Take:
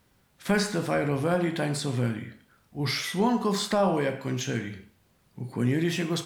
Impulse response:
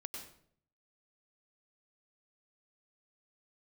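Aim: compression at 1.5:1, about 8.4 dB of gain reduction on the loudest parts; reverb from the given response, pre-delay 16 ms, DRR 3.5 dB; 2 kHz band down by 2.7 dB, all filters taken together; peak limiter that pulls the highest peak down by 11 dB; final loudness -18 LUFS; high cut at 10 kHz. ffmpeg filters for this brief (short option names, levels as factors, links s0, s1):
-filter_complex "[0:a]lowpass=10000,equalizer=f=2000:t=o:g=-3.5,acompressor=threshold=0.00631:ratio=1.5,alimiter=level_in=2.99:limit=0.0631:level=0:latency=1,volume=0.335,asplit=2[s0][s1];[1:a]atrim=start_sample=2205,adelay=16[s2];[s1][s2]afir=irnorm=-1:irlink=0,volume=0.891[s3];[s0][s3]amix=inputs=2:normalize=0,volume=13.3"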